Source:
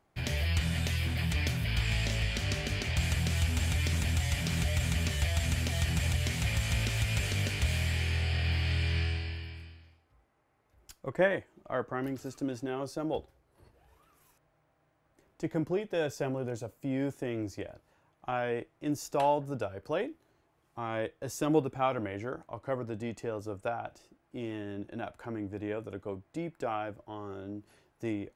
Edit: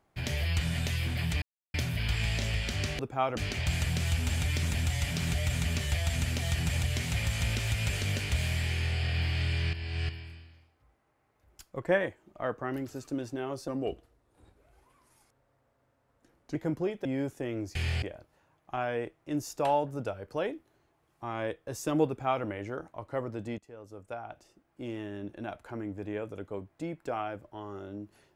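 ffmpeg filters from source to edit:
-filter_complex "[0:a]asplit=12[a][b][c][d][e][f][g][h][i][j][k][l];[a]atrim=end=1.42,asetpts=PTS-STARTPTS,afade=t=out:st=1.416:d=0.004:c=hsin,apad=pad_dur=0.32[m];[b]atrim=start=1.42:end=2.672,asetpts=PTS-STARTPTS,afade=t=in:d=0.004:c=hsin[n];[c]atrim=start=21.618:end=22.002[o];[d]atrim=start=2.668:end=9.032[p];[e]atrim=start=9.028:end=9.392,asetpts=PTS-STARTPTS,areverse[q];[f]atrim=start=9.388:end=12.984[r];[g]atrim=start=12.98:end=15.45,asetpts=PTS-STARTPTS,asetrate=37926,aresample=44100,atrim=end_sample=126659,asetpts=PTS-STARTPTS[s];[h]atrim=start=15.446:end=15.952[t];[i]atrim=start=16.868:end=17.572[u];[j]atrim=start=8.018:end=8.292[v];[k]atrim=start=17.568:end=23.13,asetpts=PTS-STARTPTS,afade=t=out:st=5.558:d=0.004:c=hsin:silence=0.133352[w];[l]atrim=start=23.13,asetpts=PTS-STARTPTS,afade=t=in:d=1.27:silence=0.133352[x];[m][n]concat=n=2:v=0:a=1[y];[y][o]acrossfade=d=0.004:c1=hsin:c2=hsin[z];[z][p]acrossfade=d=0.004:c1=hsin:c2=hsin[aa];[aa][q]acrossfade=d=0.004:c1=hsin:c2=hsin[ab];[ab][r]acrossfade=d=0.004:c1=hsin:c2=hsin[ac];[ac][s]acrossfade=d=0.004:c1=hsin:c2=hsin[ad];[ad][t]acrossfade=d=0.004:c1=hsin:c2=hsin[ae];[ae][u]acrossfade=d=0.004:c1=hsin:c2=hsin[af];[af][v]acrossfade=d=0.004:c1=hsin:c2=hsin[ag];[w][x]concat=n=2:v=0:a=1[ah];[ag][ah]acrossfade=d=0.004:c1=hsin:c2=hsin"

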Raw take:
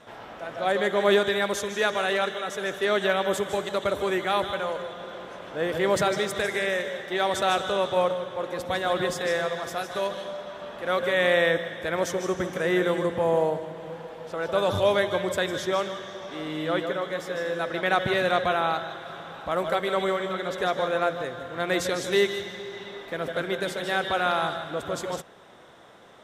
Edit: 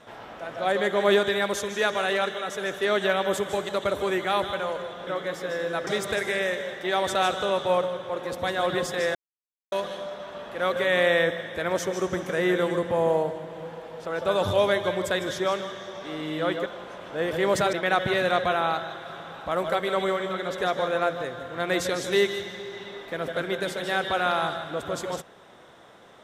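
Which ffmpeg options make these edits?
-filter_complex "[0:a]asplit=7[a][b][c][d][e][f][g];[a]atrim=end=5.072[h];[b]atrim=start=16.928:end=17.732[i];[c]atrim=start=6.138:end=9.42,asetpts=PTS-STARTPTS,afade=t=out:st=3.278:d=0.004:c=hsin[j];[d]atrim=start=9.42:end=9.99,asetpts=PTS-STARTPTS,volume=0[k];[e]atrim=start=9.99:end=16.932,asetpts=PTS-STARTPTS,afade=t=in:d=0.004:c=hsin[l];[f]atrim=start=5.068:end=6.142[m];[g]atrim=start=17.728[n];[h][i]acrossfade=d=0.004:c1=hsin:c2=hsin[o];[j][k][l]concat=n=3:v=0:a=1[p];[o][p]acrossfade=d=0.004:c1=hsin:c2=hsin[q];[q][m]acrossfade=d=0.004:c1=hsin:c2=hsin[r];[r][n]acrossfade=d=0.004:c1=hsin:c2=hsin"

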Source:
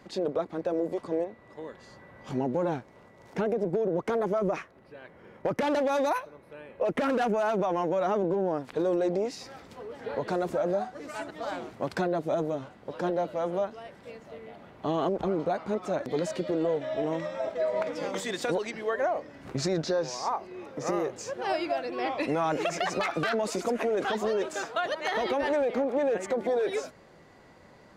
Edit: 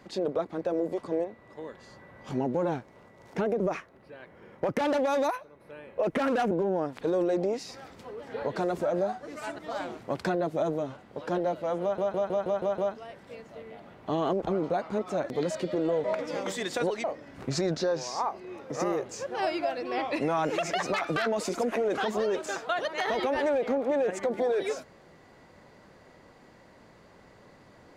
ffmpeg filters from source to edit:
-filter_complex "[0:a]asplit=13[a][b][c][d][e][f][g][h][i][j][k][l][m];[a]atrim=end=3.602[n];[b]atrim=start=4.418:end=6.122[o];[c]atrim=start=6.118:end=6.422,asetpts=PTS-STARTPTS,volume=-4.5dB[p];[d]atrim=start=6.418:end=7.332[q];[e]atrim=start=8.228:end=13.702[r];[f]atrim=start=13.538:end=13.702[s];[g]atrim=start=13.538:end=13.702[t];[h]atrim=start=13.538:end=13.702[u];[i]atrim=start=13.538:end=13.702[v];[j]atrim=start=13.538:end=13.702[w];[k]atrim=start=13.538:end=16.802[x];[l]atrim=start=17.718:end=18.722[y];[m]atrim=start=19.108[z];[n][o]acrossfade=d=0.004:c1=hsin:c2=hsin[aa];[aa][p]acrossfade=d=0.004:c1=hsin:c2=hsin[ab];[ab][q]acrossfade=d=0.004:c1=hsin:c2=hsin[ac];[ac][r]acrossfade=d=0.004:c1=hsin:c2=hsin[ad];[ad][s]acrossfade=d=0.004:c1=hsin:c2=hsin[ae];[ae][t]acrossfade=d=0.004:c1=hsin:c2=hsin[af];[af][u]acrossfade=d=0.004:c1=hsin:c2=hsin[ag];[ag][v]acrossfade=d=0.004:c1=hsin:c2=hsin[ah];[ah][w]acrossfade=d=0.004:c1=hsin:c2=hsin[ai];[ai][x]acrossfade=d=0.004:c1=hsin:c2=hsin[aj];[aj][y]acrossfade=d=0.004:c1=hsin:c2=hsin[ak];[ak][z]acrossfade=d=0.004:c1=hsin:c2=hsin"

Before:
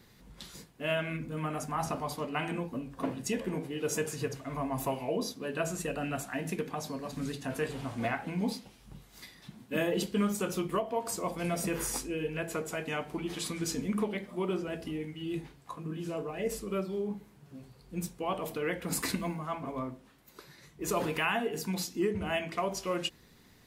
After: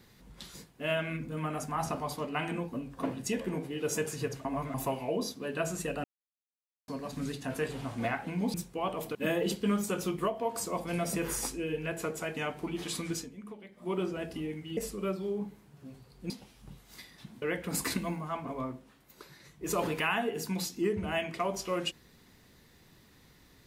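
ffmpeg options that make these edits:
-filter_complex "[0:a]asplit=12[a][b][c][d][e][f][g][h][i][j][k][l];[a]atrim=end=4.452[m];[b]atrim=start=4.448:end=4.742,asetpts=PTS-STARTPTS,areverse[n];[c]atrim=start=4.738:end=6.04,asetpts=PTS-STARTPTS,afade=t=out:st=1.298:d=0.004:c=hsin[o];[d]atrim=start=6.04:end=6.88,asetpts=PTS-STARTPTS,volume=0[p];[e]atrim=start=6.88:end=8.542,asetpts=PTS-STARTPTS,afade=t=in:d=0.004:c=hsin[q];[f]atrim=start=17.988:end=18.602[r];[g]atrim=start=9.658:end=13.8,asetpts=PTS-STARTPTS,afade=t=out:st=3.962:d=0.18:silence=0.188365[s];[h]atrim=start=13.8:end=14.25,asetpts=PTS-STARTPTS,volume=-14.5dB[t];[i]atrim=start=14.25:end=15.282,asetpts=PTS-STARTPTS,afade=t=in:d=0.18:silence=0.188365[u];[j]atrim=start=16.458:end=17.992[v];[k]atrim=start=8.538:end=9.662[w];[l]atrim=start=18.598[x];[m][n]acrossfade=d=0.004:c1=hsin:c2=hsin[y];[o][p][q]concat=n=3:v=0:a=1[z];[y][z]acrossfade=d=0.004:c1=hsin:c2=hsin[aa];[aa][r]acrossfade=d=0.004:c1=hsin:c2=hsin[ab];[s][t][u]concat=n=3:v=0:a=1[ac];[ab][ac]acrossfade=d=0.004:c1=hsin:c2=hsin[ad];[ad][v]acrossfade=d=0.004:c1=hsin:c2=hsin[ae];[ae][w]acrossfade=d=0.004:c1=hsin:c2=hsin[af];[af][x]acrossfade=d=0.004:c1=hsin:c2=hsin"

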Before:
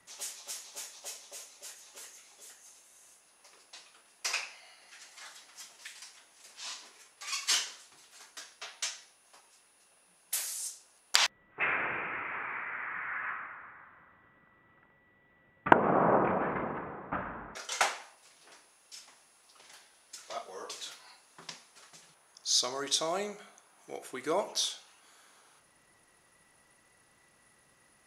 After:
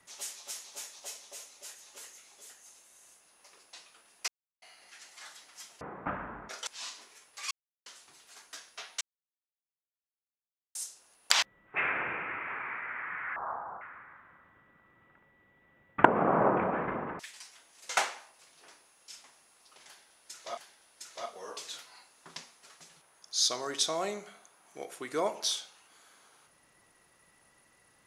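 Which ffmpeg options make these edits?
-filter_complex "[0:a]asplit=14[a][b][c][d][e][f][g][h][i][j][k][l][m][n];[a]atrim=end=4.28,asetpts=PTS-STARTPTS,afade=t=out:st=4.276:d=0.004:c=hsin[o];[b]atrim=start=4.28:end=4.62,asetpts=PTS-STARTPTS,volume=0[p];[c]atrim=start=4.62:end=5.812,asetpts=PTS-STARTPTS,afade=t=in:d=0.004:c=hsin[q];[d]atrim=start=16.868:end=17.732[r];[e]atrim=start=6.508:end=7.35,asetpts=PTS-STARTPTS,afade=t=out:st=0.838:d=0.004:c=hsin[s];[f]atrim=start=7.35:end=7.7,asetpts=PTS-STARTPTS,volume=0[t];[g]atrim=start=7.7:end=8.85,asetpts=PTS-STARTPTS,afade=t=in:d=0.004:c=hsin,afade=t=out:st=1.146:d=0.004:c=hsin[u];[h]atrim=start=8.85:end=10.59,asetpts=PTS-STARTPTS,volume=0[v];[i]atrim=start=10.59:end=13.204,asetpts=PTS-STARTPTS,afade=t=in:d=0.004:c=hsin[w];[j]atrim=start=13.2:end=13.49,asetpts=PTS-STARTPTS,asetrate=28224,aresample=44100[x];[k]atrim=start=13.486:end=16.872[y];[l]atrim=start=5.808:end=6.512[z];[m]atrim=start=17.728:end=20.412[aa];[n]atrim=start=19.698[ab];[o][p][q]concat=n=3:v=0:a=1[ac];[ac][r]acrossfade=d=0.004:c1=hsin:c2=hsin[ad];[s][t][u][v][w]concat=n=5:v=0:a=1[ae];[ad][ae]acrossfade=d=0.004:c1=hsin:c2=hsin[af];[af][x]acrossfade=d=0.004:c1=hsin:c2=hsin[ag];[ag][y]acrossfade=d=0.004:c1=hsin:c2=hsin[ah];[ah][z]acrossfade=d=0.004:c1=hsin:c2=hsin[ai];[ai][aa]acrossfade=d=0.004:c1=hsin:c2=hsin[aj];[aj][ab]acrossfade=d=0.004:c1=hsin:c2=hsin"

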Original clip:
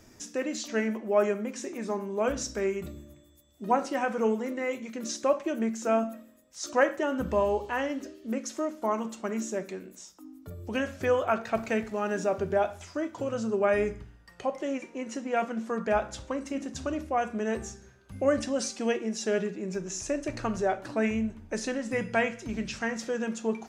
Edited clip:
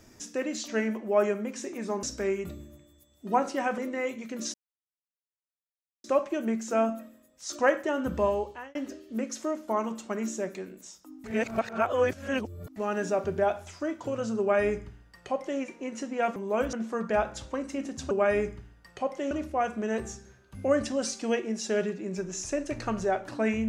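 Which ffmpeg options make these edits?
-filter_complex "[0:a]asplit=11[a][b][c][d][e][f][g][h][i][j][k];[a]atrim=end=2.032[l];[b]atrim=start=2.398:end=4.152[m];[c]atrim=start=4.418:end=5.18,asetpts=PTS-STARTPTS,afade=t=out:st=0.758:d=0.004:c=hsin,apad=pad_dur=1.5[n];[d]atrim=start=5.18:end=7.89,asetpts=PTS-STARTPTS,afade=t=in:d=0.004:c=hsin,afade=t=out:st=2.22:d=0.49[o];[e]atrim=start=7.89:end=10.382,asetpts=PTS-STARTPTS,afade=t=in:d=0.004:c=hsin[p];[f]atrim=start=10.378:end=11.902,asetpts=PTS-STARTPTS,areverse[q];[g]atrim=start=11.898:end=15.502[r];[h]atrim=start=2.028:end=2.402[s];[i]atrim=start=15.498:end=16.882[t];[j]atrim=start=13.538:end=14.742[u];[k]atrim=start=16.878[v];[l][m]acrossfade=d=0.004:c1=hsin:c2=hsin[w];[n][o][p]concat=n=3:v=0:a=1[x];[w][x]acrossfade=d=0.004:c1=hsin:c2=hsin[y];[y][q]acrossfade=d=0.004:c1=hsin:c2=hsin[z];[z][r]acrossfade=d=0.004:c1=hsin:c2=hsin[aa];[aa][s]acrossfade=d=0.004:c1=hsin:c2=hsin[ab];[ab][t]acrossfade=d=0.004:c1=hsin:c2=hsin[ac];[ac][u]acrossfade=d=0.004:c1=hsin:c2=hsin[ad];[ad][v]acrossfade=d=0.004:c1=hsin:c2=hsin"

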